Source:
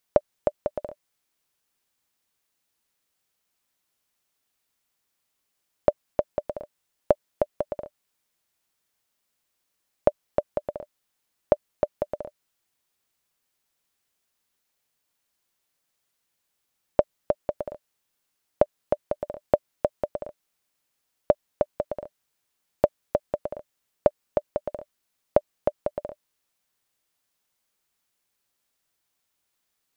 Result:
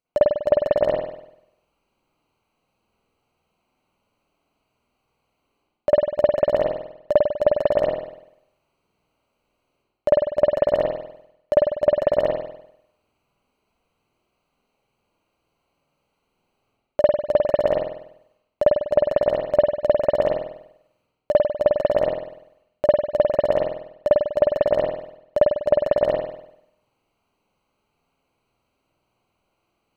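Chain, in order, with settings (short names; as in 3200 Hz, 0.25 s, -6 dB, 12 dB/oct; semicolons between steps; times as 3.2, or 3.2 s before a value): Wiener smoothing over 25 samples; high shelf 2000 Hz +11 dB; reverse; compressor 6:1, threshold -29 dBFS, peak gain reduction 16 dB; reverse; reverb RT60 0.75 s, pre-delay 49 ms, DRR -8.5 dB; gain +7.5 dB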